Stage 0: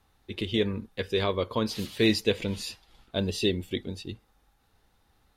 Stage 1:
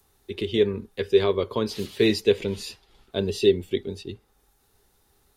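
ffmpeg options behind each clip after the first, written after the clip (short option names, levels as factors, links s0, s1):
-filter_complex "[0:a]equalizer=f=400:t=o:w=0.22:g=12.5,acrossover=split=110|1600|6000[s0][s1][s2][s3];[s3]acompressor=mode=upward:threshold=0.00126:ratio=2.5[s4];[s0][s1][s2][s4]amix=inputs=4:normalize=0"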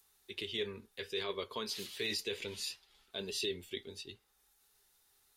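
-af "tiltshelf=f=910:g=-8.5,flanger=delay=4.5:depth=3.8:regen=-64:speed=0.65:shape=sinusoidal,alimiter=limit=0.1:level=0:latency=1:release=19,volume=0.473"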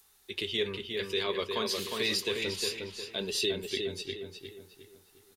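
-filter_complex "[0:a]asplit=2[s0][s1];[s1]adelay=358,lowpass=f=3300:p=1,volume=0.631,asplit=2[s2][s3];[s3]adelay=358,lowpass=f=3300:p=1,volume=0.41,asplit=2[s4][s5];[s5]adelay=358,lowpass=f=3300:p=1,volume=0.41,asplit=2[s6][s7];[s7]adelay=358,lowpass=f=3300:p=1,volume=0.41,asplit=2[s8][s9];[s9]adelay=358,lowpass=f=3300:p=1,volume=0.41[s10];[s0][s2][s4][s6][s8][s10]amix=inputs=6:normalize=0,volume=2.11"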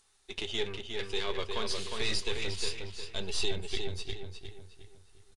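-af "aeval=exprs='if(lt(val(0),0),0.447*val(0),val(0))':c=same,asubboost=boost=7.5:cutoff=97,aresample=22050,aresample=44100"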